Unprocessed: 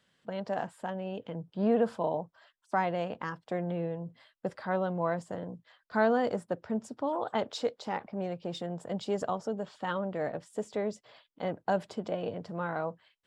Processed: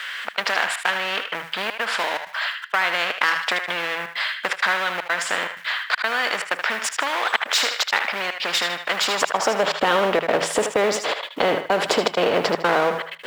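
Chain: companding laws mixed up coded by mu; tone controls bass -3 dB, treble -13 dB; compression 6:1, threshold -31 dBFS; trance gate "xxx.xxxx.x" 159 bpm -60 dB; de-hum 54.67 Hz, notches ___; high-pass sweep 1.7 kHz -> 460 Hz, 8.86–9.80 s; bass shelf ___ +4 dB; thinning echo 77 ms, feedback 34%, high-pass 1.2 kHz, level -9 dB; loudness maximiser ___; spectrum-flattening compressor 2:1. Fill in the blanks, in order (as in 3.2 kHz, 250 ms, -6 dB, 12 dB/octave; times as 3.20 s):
3, 190 Hz, +23.5 dB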